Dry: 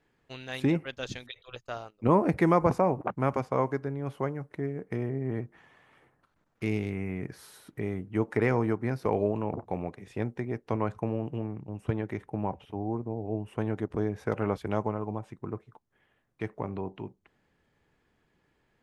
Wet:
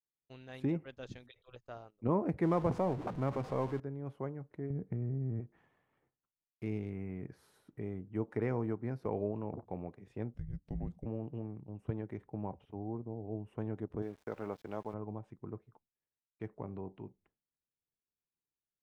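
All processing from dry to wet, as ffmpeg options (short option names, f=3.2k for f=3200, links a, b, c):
-filter_complex "[0:a]asettb=1/sr,asplit=3[a][b][c];[a]atrim=end=2.434[d];[b]atrim=start=2.43:end=3.8,asetpts=PTS-STARTPTS,afade=t=in:d=0.004:c=qsin,afade=t=out:st=1.366:d=0.004:c=qsin,aeval=exprs='val(0)+0.5*0.0299*sgn(val(0))':c=same,adynamicsmooth=sensitivity=6:basefreq=6.5k[e];[c]atrim=start=3.796[f];[d][e]acrossfade=d=0.004:c1=hsin:c2=qsin[g];[g][f]acrossfade=d=0.004:c1=qsin:c2=hsin,asettb=1/sr,asplit=3[h][i][j];[h]atrim=end=4.704[k];[i]atrim=start=4.7:end=5.4,asetpts=PTS-STARTPTS,afade=t=in:d=0.004:c=qsin,afade=t=out:st=0.696:d=0.004:c=qsin,highpass=41,bass=f=250:g=14,treble=f=4k:g=-15,acompressor=threshold=-25dB:ratio=5:attack=3.2:release=140:knee=1:detection=peak[l];[j]atrim=start=5.396[m];[k][l]acrossfade=d=0.004:c1=hsin:c2=qsin[n];[n][m]acrossfade=d=0.004:c1=qsin:c2=hsin,asettb=1/sr,asplit=3[o][p][q];[o]atrim=end=10.344[r];[p]atrim=start=10.34:end=11.06,asetpts=PTS-STARTPTS,afade=t=in:d=0.004:c=qsin,afade=t=out:st=0.716:d=0.004:c=qsin,equalizer=f=1.5k:t=o:w=1.4:g=-15,acompressor=mode=upward:threshold=-45dB:ratio=2.5:attack=3.2:release=140:knee=2.83:detection=peak,afreqshift=-280[s];[q]atrim=start=11.056[t];[r][s]acrossfade=d=0.004:c1=hsin:c2=qsin[u];[u][t]acrossfade=d=0.004:c1=qsin:c2=hsin,asettb=1/sr,asplit=3[v][w][x];[v]atrim=end=14.024[y];[w]atrim=start=14.02:end=14.94,asetpts=PTS-STARTPTS,afade=t=in:d=0.004:c=qsin,afade=t=out:st=0.916:d=0.004:c=qsin,lowpass=f=5.9k:w=0.5412,lowpass=f=5.9k:w=1.3066,aemphasis=mode=production:type=bsi,aeval=exprs='val(0)*gte(abs(val(0)),0.00596)':c=same[z];[x]atrim=start=14.936[aa];[y][z]acrossfade=d=0.004:c1=hsin:c2=qsin[ab];[ab][aa]acrossfade=d=0.004:c1=qsin:c2=hsin,highshelf=f=6.1k:g=-12,agate=range=-33dB:threshold=-56dB:ratio=3:detection=peak,equalizer=f=2.8k:w=0.31:g=-7,volume=-7dB"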